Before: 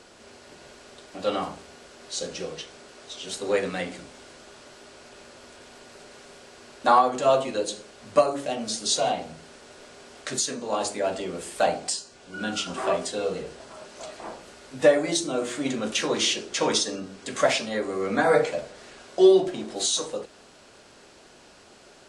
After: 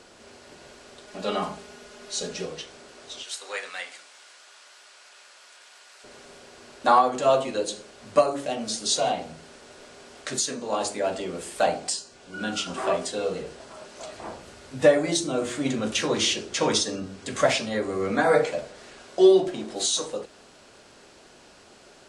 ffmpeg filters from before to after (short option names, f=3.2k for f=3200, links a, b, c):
-filter_complex "[0:a]asettb=1/sr,asplit=3[a][b][c];[a]atrim=end=1.074[d];[b]atrim=start=1.07:end=2.46,asetpts=PTS-STARTPTS,afade=t=in:d=0.004:c=qsin,afade=t=out:st=1.386:d=0.004:c=qsin,aecho=1:1:4.8:0.67,atrim=end_sample=61299[e];[c]atrim=start=2.456[f];[d][e]acrossfade=d=0.004:c1=hsin:c2=qsin[g];[g][f]acrossfade=d=0.004:c1=qsin:c2=hsin,asettb=1/sr,asplit=3[h][i][j];[h]atrim=end=3.234[k];[i]atrim=start=3.23:end=6.04,asetpts=PTS-STARTPTS,afade=t=in:d=0.004:c=qsin,afade=t=out:st=2.806:d=0.004:c=qsin,highpass=1.1k[l];[j]atrim=start=6.036[m];[k][l]acrossfade=d=0.004:c1=hsin:c2=qsin[n];[n][m]acrossfade=d=0.004:c1=qsin:c2=hsin,asettb=1/sr,asplit=3[o][p][q];[o]atrim=end=14.124[r];[p]atrim=start=14.12:end=18.12,asetpts=PTS-STARTPTS,afade=t=in:d=0.004:c=qsin,afade=t=out:st=3.996:d=0.004:c=qsin,equalizer=f=88:t=o:w=1.5:g=9.5[s];[q]atrim=start=18.116[t];[r][s]acrossfade=d=0.004:c1=hsin:c2=qsin[u];[u][t]acrossfade=d=0.004:c1=qsin:c2=hsin"